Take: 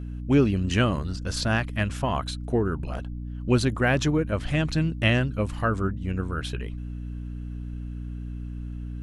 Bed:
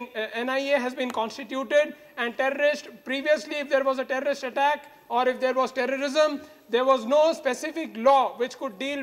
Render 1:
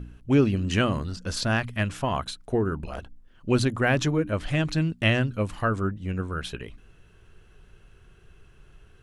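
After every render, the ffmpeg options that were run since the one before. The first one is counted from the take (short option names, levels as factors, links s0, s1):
-af "bandreject=f=60:t=h:w=4,bandreject=f=120:t=h:w=4,bandreject=f=180:t=h:w=4,bandreject=f=240:t=h:w=4,bandreject=f=300:t=h:w=4"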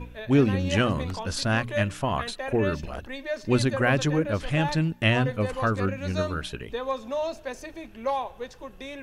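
-filter_complex "[1:a]volume=0.355[s0];[0:a][s0]amix=inputs=2:normalize=0"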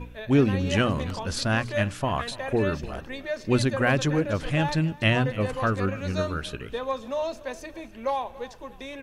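-af "aecho=1:1:286|572|858:0.112|0.0494|0.0217"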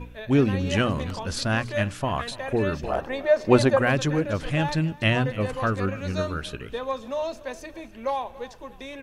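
-filter_complex "[0:a]asettb=1/sr,asplit=3[s0][s1][s2];[s0]atrim=end=2.844[s3];[s1]atrim=start=2.84:end=3.79,asetpts=PTS-STARTPTS,afade=t=in:d=0.004:c=qsin,afade=t=out:st=0.946:d=0.004:c=qsin,equalizer=f=730:w=0.72:g=13[s4];[s2]atrim=start=3.786[s5];[s3][s4]acrossfade=d=0.004:c1=hsin:c2=qsin[s6];[s6][s5]acrossfade=d=0.004:c1=qsin:c2=hsin"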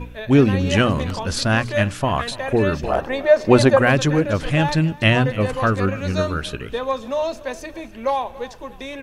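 -af "volume=2,alimiter=limit=0.891:level=0:latency=1"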